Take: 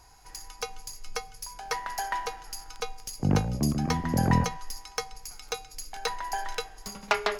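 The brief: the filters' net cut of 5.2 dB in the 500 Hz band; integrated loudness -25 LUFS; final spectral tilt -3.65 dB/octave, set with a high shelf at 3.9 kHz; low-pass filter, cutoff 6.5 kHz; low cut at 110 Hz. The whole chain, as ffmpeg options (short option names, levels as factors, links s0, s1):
-af "highpass=110,lowpass=6500,equalizer=f=500:t=o:g=-6.5,highshelf=f=3900:g=8.5,volume=2.24"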